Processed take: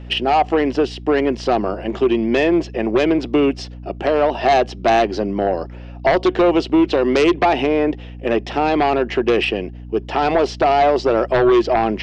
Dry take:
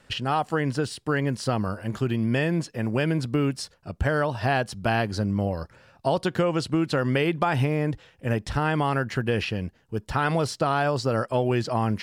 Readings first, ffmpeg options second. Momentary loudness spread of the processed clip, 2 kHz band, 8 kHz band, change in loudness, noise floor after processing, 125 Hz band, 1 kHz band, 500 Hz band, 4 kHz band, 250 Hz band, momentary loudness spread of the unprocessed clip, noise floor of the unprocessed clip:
7 LU, +5.0 dB, can't be measured, +8.5 dB, −34 dBFS, −5.0 dB, +9.5 dB, +11.0 dB, +7.5 dB, +8.0 dB, 6 LU, −60 dBFS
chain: -af "highpass=frequency=250:width=0.5412,highpass=frequency=250:width=1.3066,equalizer=frequency=370:width_type=q:width=4:gain=9,equalizer=frequency=710:width_type=q:width=4:gain=7,equalizer=frequency=1100:width_type=q:width=4:gain=-3,equalizer=frequency=1500:width_type=q:width=4:gain=-8,equalizer=frequency=2800:width_type=q:width=4:gain=4,equalizer=frequency=4300:width_type=q:width=4:gain=-8,lowpass=frequency=4900:width=0.5412,lowpass=frequency=4900:width=1.3066,aeval=exprs='0.447*sin(PI/2*2.51*val(0)/0.447)':channel_layout=same,aeval=exprs='val(0)+0.0316*(sin(2*PI*60*n/s)+sin(2*PI*2*60*n/s)/2+sin(2*PI*3*60*n/s)/3+sin(2*PI*4*60*n/s)/4+sin(2*PI*5*60*n/s)/5)':channel_layout=same,volume=-2.5dB"

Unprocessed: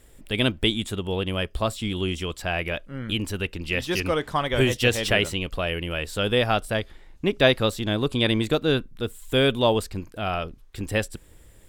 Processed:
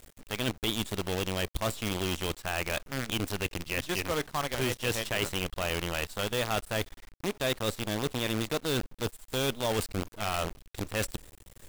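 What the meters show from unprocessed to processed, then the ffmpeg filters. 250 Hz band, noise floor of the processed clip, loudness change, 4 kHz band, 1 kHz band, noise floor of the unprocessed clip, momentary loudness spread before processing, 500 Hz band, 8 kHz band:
−8.0 dB, −59 dBFS, −7.0 dB, −7.0 dB, −5.5 dB, −51 dBFS, 10 LU, −8.5 dB, +1.0 dB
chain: -af "areverse,acompressor=threshold=-31dB:ratio=4,areverse,acrusher=bits=6:dc=4:mix=0:aa=0.000001,volume=1.5dB"

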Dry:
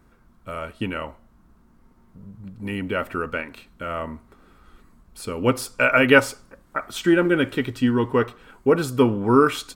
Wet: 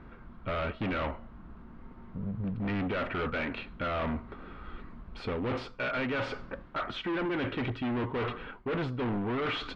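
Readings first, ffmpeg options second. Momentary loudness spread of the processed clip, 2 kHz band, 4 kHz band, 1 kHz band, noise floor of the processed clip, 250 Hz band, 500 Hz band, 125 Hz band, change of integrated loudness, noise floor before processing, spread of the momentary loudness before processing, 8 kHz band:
16 LU, −12.0 dB, −8.0 dB, −9.5 dB, −50 dBFS, −11.0 dB, −12.5 dB, −6.5 dB, −12.0 dB, −56 dBFS, 18 LU, below −25 dB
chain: -af "areverse,acompressor=threshold=-27dB:ratio=10,areverse,asoftclip=type=hard:threshold=-37dB,lowpass=frequency=3300:width=0.5412,lowpass=frequency=3300:width=1.3066,volume=7.5dB"

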